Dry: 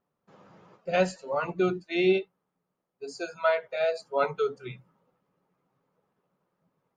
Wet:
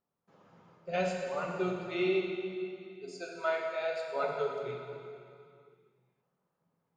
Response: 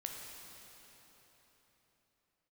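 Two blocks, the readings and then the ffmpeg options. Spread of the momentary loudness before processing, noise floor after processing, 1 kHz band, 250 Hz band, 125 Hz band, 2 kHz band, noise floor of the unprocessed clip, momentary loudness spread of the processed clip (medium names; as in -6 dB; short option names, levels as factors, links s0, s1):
17 LU, -83 dBFS, -5.0 dB, -5.5 dB, -5.0 dB, -5.0 dB, -83 dBFS, 15 LU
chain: -filter_complex "[1:a]atrim=start_sample=2205,asetrate=70560,aresample=44100[s0];[0:a][s0]afir=irnorm=-1:irlink=0"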